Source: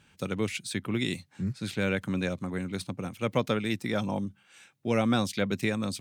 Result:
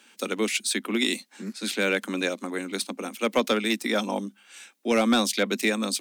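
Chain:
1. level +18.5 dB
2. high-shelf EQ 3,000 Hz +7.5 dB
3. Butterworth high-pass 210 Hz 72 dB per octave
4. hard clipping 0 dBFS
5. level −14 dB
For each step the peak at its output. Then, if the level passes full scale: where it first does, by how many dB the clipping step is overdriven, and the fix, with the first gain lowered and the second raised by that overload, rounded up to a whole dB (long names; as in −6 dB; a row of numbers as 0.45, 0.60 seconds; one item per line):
+4.5, +6.5, +5.5, 0.0, −14.0 dBFS
step 1, 5.5 dB
step 1 +12.5 dB, step 5 −8 dB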